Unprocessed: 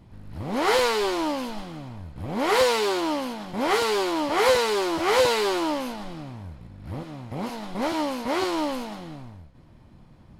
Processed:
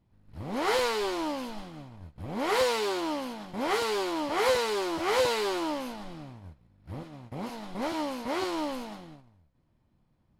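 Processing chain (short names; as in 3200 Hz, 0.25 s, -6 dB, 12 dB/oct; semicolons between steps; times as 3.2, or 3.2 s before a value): gate -37 dBFS, range -13 dB; gain -5.5 dB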